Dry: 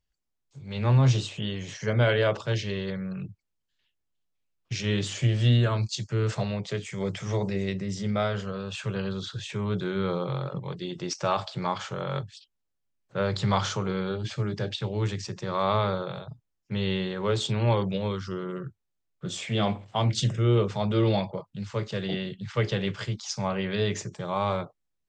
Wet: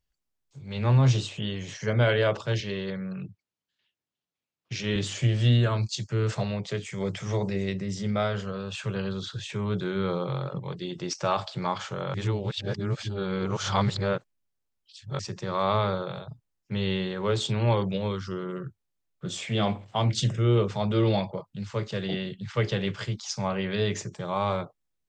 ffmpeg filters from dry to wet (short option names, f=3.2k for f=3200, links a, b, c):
-filter_complex "[0:a]asettb=1/sr,asplit=3[a][b][c];[a]atrim=end=2.604[d];[b]atrim=start=2.6:end=4.96,asetpts=PTS-STARTPTS,afade=t=in:d=0.004:c=qsin,afade=t=out:st=2.356:d=0.004:c=qsin,highpass=120,lowpass=6.5k[e];[c]atrim=start=4.956[f];[d][e]acrossfade=d=0.004:c1=hsin:c2=qsin[g];[g][f]acrossfade=d=0.004:c1=qsin:c2=hsin,asplit=3[h][i][j];[h]atrim=end=12.142[k];[i]atrim=start=12.138:end=15.192,asetpts=PTS-STARTPTS,areverse[l];[j]atrim=start=15.188[m];[k][l]acrossfade=d=0.004:c1=hsin:c2=hsin[n];[n][m]acrossfade=d=0.004:c1=hsin:c2=hsin"